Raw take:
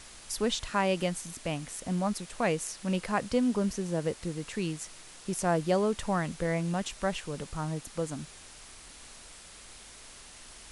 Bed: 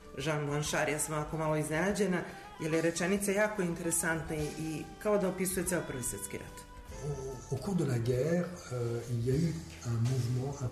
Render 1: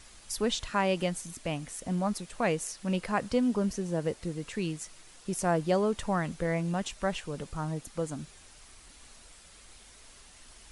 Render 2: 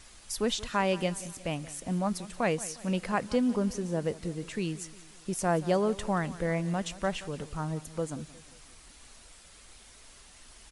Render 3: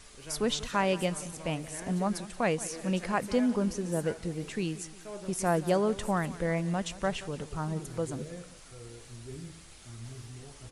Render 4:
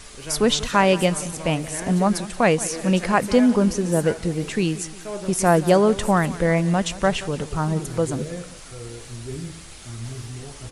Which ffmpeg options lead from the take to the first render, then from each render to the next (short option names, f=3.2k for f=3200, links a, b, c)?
-af "afftdn=nr=6:nf=-50"
-af "aecho=1:1:178|356|534|712:0.126|0.0604|0.029|0.0139"
-filter_complex "[1:a]volume=-13dB[a];[0:a][a]amix=inputs=2:normalize=0"
-af "volume=10.5dB"